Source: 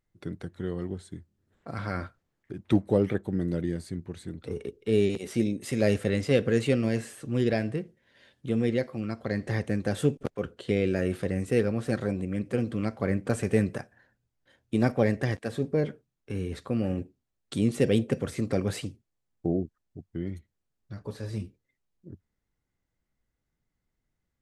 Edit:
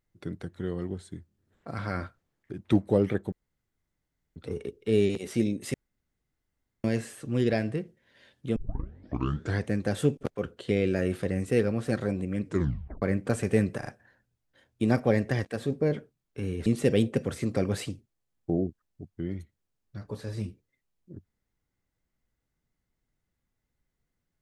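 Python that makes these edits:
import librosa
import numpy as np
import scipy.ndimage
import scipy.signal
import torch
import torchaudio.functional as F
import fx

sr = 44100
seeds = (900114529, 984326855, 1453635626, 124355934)

y = fx.edit(x, sr, fx.room_tone_fill(start_s=3.32, length_s=1.04),
    fx.room_tone_fill(start_s=5.74, length_s=1.1),
    fx.tape_start(start_s=8.56, length_s=1.09),
    fx.tape_stop(start_s=12.44, length_s=0.58),
    fx.stutter(start_s=13.78, slice_s=0.04, count=3),
    fx.cut(start_s=16.58, length_s=1.04), tone=tone)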